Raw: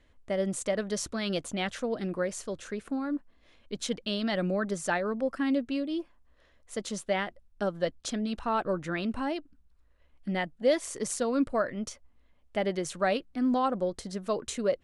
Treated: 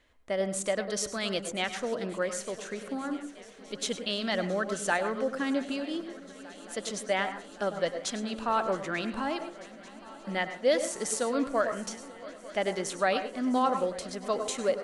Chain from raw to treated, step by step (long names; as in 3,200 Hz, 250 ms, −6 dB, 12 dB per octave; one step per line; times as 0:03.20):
low-shelf EQ 320 Hz −10.5 dB
feedback echo with a long and a short gap by turns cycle 891 ms, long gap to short 3 to 1, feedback 79%, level −21 dB
convolution reverb RT60 0.35 s, pre-delay 92 ms, DRR 9 dB
level +2.5 dB